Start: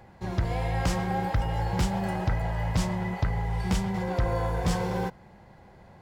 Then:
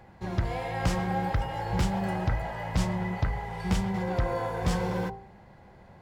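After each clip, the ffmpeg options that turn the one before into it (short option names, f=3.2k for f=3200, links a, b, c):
-af "bass=f=250:g=0,treble=f=4k:g=-3,bandreject=f=55.97:t=h:w=4,bandreject=f=111.94:t=h:w=4,bandreject=f=167.91:t=h:w=4,bandreject=f=223.88:t=h:w=4,bandreject=f=279.85:t=h:w=4,bandreject=f=335.82:t=h:w=4,bandreject=f=391.79:t=h:w=4,bandreject=f=447.76:t=h:w=4,bandreject=f=503.73:t=h:w=4,bandreject=f=559.7:t=h:w=4,bandreject=f=615.67:t=h:w=4,bandreject=f=671.64:t=h:w=4,bandreject=f=727.61:t=h:w=4,bandreject=f=783.58:t=h:w=4,bandreject=f=839.55:t=h:w=4,bandreject=f=895.52:t=h:w=4,bandreject=f=951.49:t=h:w=4,bandreject=f=1.00746k:t=h:w=4,bandreject=f=1.06343k:t=h:w=4,bandreject=f=1.1194k:t=h:w=4"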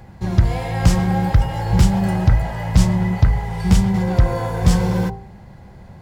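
-af "bass=f=250:g=9,treble=f=4k:g=7,volume=5.5dB"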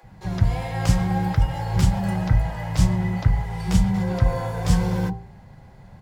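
-filter_complex "[0:a]flanger=delay=6.3:depth=1.3:regen=-61:speed=0.81:shape=sinusoidal,acrossover=split=350[a][b];[a]adelay=30[c];[c][b]amix=inputs=2:normalize=0"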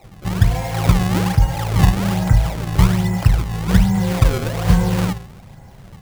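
-af "acrusher=samples=27:mix=1:aa=0.000001:lfo=1:lforange=43.2:lforate=1.2,volume=5dB"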